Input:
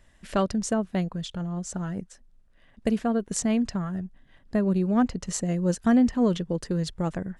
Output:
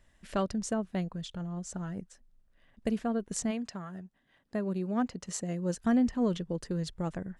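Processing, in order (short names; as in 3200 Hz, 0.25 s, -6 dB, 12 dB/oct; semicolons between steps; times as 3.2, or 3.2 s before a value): 3.5–5.73 HPF 410 Hz -> 130 Hz 6 dB/oct; gain -6 dB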